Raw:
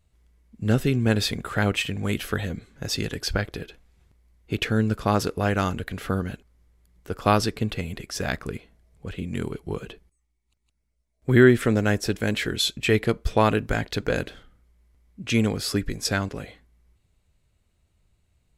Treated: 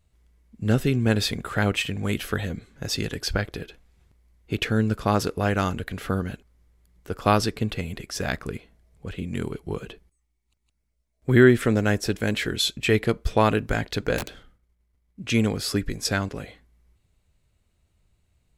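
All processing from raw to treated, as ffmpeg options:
-filter_complex "[0:a]asettb=1/sr,asplit=3[a][b][c];[a]atrim=end=14.184[d];[b]atrim=start=14.18:end=15.27,asetpts=PTS-STARTPTS,afade=t=in:d=0.004:c=qsin,afade=t=out:st=1.086:d=0.004:c=qsin,agate=range=-33dB:threshold=-54dB:ratio=3:release=100:detection=peak,aeval=exprs='(mod(13.3*val(0)+1,2)-1)/13.3':c=same[e];[c]atrim=start=15.266[f];[d][e]acrossfade=d=0.004:c1=hsin:c2=qsin[g];[g][f]acrossfade=d=0.004:c1=qsin:c2=hsin"

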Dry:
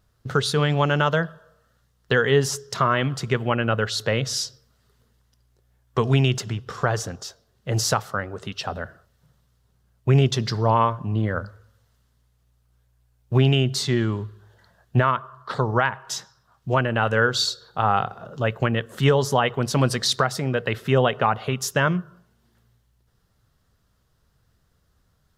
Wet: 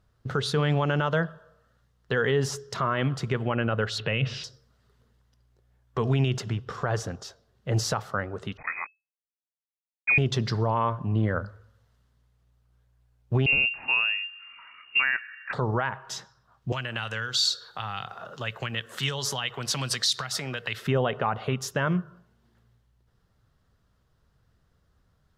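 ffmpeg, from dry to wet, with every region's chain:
-filter_complex "[0:a]asettb=1/sr,asplit=3[a][b][c];[a]atrim=end=3.984[d];[b]atrim=start=3.98:end=4.44,asetpts=PTS-STARTPTS,afade=t=in:d=0.004:c=qsin,afade=t=out:st=0.456:d=0.004:c=qsin,lowpass=f=2.7k:t=q:w=6.5,equalizer=f=140:t=o:w=1.8:g=6.5[e];[c]atrim=start=4.436[f];[d][e]acrossfade=d=0.004:c1=hsin:c2=qsin[g];[g][f]acrossfade=d=0.004:c1=qsin:c2=hsin,asettb=1/sr,asplit=3[h][i][j];[h]atrim=end=8.574[k];[i]atrim=start=8.57:end=10.18,asetpts=PTS-STARTPTS,afade=t=in:d=0.004:c=qsin,afade=t=out:st=1.606:d=0.004:c=qsin,equalizer=f=390:w=5.5:g=-4,aeval=exprs='val(0)*gte(abs(val(0)),0.02)':c=same,lowpass=f=2.2k:t=q:w=0.5098,lowpass=f=2.2k:t=q:w=0.6013,lowpass=f=2.2k:t=q:w=0.9,lowpass=f=2.2k:t=q:w=2.563,afreqshift=-2600[l];[j]atrim=start=10.176[m];[k][l]acrossfade=d=0.004:c1=hsin:c2=qsin[n];[n][m]acrossfade=d=0.004:c1=qsin:c2=hsin,asettb=1/sr,asplit=3[o][p][q];[o]atrim=end=13.464[r];[p]atrim=start=13.46:end=15.53,asetpts=PTS-STARTPTS,afade=t=in:d=0.004:c=qsin,afade=t=out:st=2.066:d=0.004:c=qsin,lowpass=f=2.5k:t=q:w=0.5098,lowpass=f=2.5k:t=q:w=0.6013,lowpass=f=2.5k:t=q:w=0.9,lowpass=f=2.5k:t=q:w=2.563,afreqshift=-2900,acompressor=mode=upward:threshold=-34dB:ratio=2.5:attack=3.2:release=140:knee=2.83:detection=peak[s];[q]atrim=start=15.526[t];[r][s]acrossfade=d=0.004:c1=hsin:c2=qsin[u];[u][t]acrossfade=d=0.004:c1=qsin:c2=hsin,asettb=1/sr,asplit=3[v][w][x];[v]atrim=end=16.724[y];[w]atrim=start=16.72:end=20.87,asetpts=PTS-STARTPTS,afade=t=in:d=0.004:c=qsin,afade=t=out:st=4.146:d=0.004:c=qsin,tiltshelf=f=700:g=-9.5,acrossover=split=180|3000[z][aa][ab];[aa]acompressor=threshold=-30dB:ratio=10:attack=3.2:release=140:knee=2.83:detection=peak[ac];[z][ac][ab]amix=inputs=3:normalize=0[ad];[x]atrim=start=20.866[ae];[y][ad]acrossfade=d=0.004:c1=hsin:c2=qsin[af];[af][ae]acrossfade=d=0.004:c1=qsin:c2=hsin,aemphasis=mode=reproduction:type=cd,alimiter=limit=-13dB:level=0:latency=1:release=53,volume=-1.5dB"

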